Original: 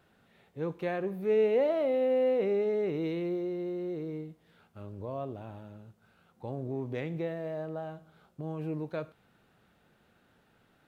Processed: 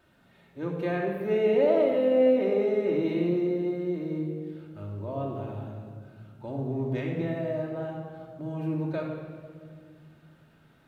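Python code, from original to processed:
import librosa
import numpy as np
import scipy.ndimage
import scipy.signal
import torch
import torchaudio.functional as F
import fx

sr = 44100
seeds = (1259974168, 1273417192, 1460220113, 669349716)

y = fx.room_shoebox(x, sr, seeds[0], volume_m3=2900.0, walls='mixed', distance_m=2.7)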